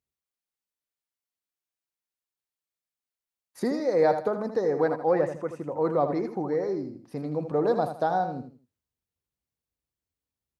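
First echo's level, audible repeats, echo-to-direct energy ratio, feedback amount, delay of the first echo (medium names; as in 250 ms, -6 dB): -9.0 dB, 3, -8.5 dB, 30%, 80 ms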